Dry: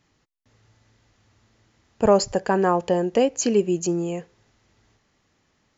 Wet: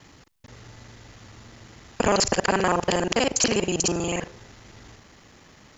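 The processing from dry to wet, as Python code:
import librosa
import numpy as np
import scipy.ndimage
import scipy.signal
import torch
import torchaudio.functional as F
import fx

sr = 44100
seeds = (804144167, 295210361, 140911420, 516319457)

y = fx.local_reverse(x, sr, ms=40.0)
y = fx.spectral_comp(y, sr, ratio=2.0)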